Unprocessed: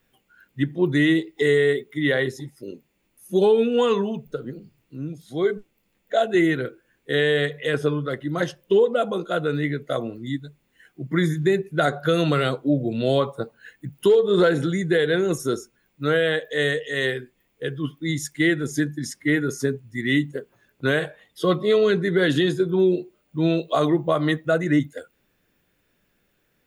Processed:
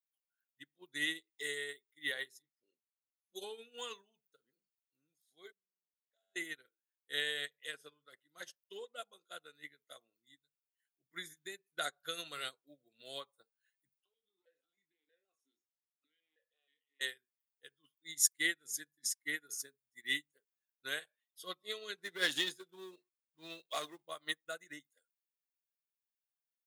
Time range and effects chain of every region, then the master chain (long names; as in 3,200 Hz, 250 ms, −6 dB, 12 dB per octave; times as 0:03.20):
0:02.42–0:03.44: bass and treble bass −1 dB, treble +5 dB + low-pass that shuts in the quiet parts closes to 1,300 Hz, open at −21 dBFS + double-tracking delay 13 ms −7.5 dB
0:05.52–0:06.36: tuned comb filter 95 Hz, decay 1.7 s, mix 90% + downward compressor 5 to 1, threshold −37 dBFS
0:13.98–0:17.01: downward compressor 10 to 1, threshold −21 dBFS + double-tracking delay 26 ms −9 dB + formant filter that steps through the vowels 6.3 Hz
0:21.98–0:24.03: high-shelf EQ 8,900 Hz −4.5 dB + leveller curve on the samples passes 1
whole clip: first difference; expander for the loud parts 2.5 to 1, over −51 dBFS; level +6.5 dB